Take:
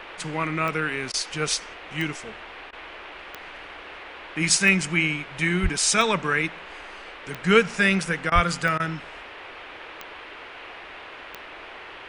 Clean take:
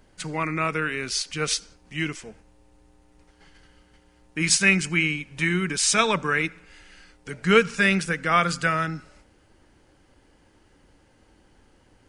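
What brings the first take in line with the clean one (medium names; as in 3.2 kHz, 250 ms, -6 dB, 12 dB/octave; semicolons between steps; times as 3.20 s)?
de-click; 5.62–5.74 s: high-pass 140 Hz 24 dB/octave; 8.34–8.46 s: high-pass 140 Hz 24 dB/octave; interpolate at 1.12/2.71/8.30/8.78 s, 17 ms; noise print and reduce 17 dB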